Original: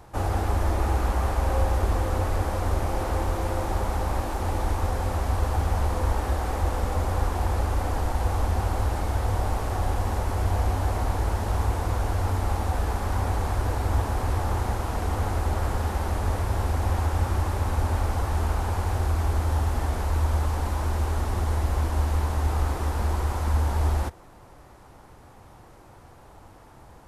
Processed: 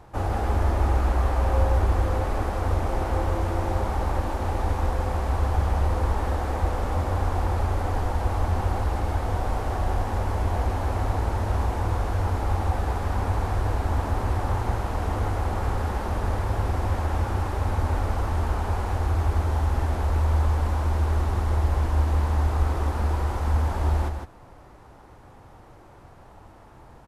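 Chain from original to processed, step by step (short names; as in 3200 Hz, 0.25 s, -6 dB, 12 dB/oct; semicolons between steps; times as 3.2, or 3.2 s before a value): high shelf 5000 Hz -8.5 dB; on a send: echo 0.156 s -6 dB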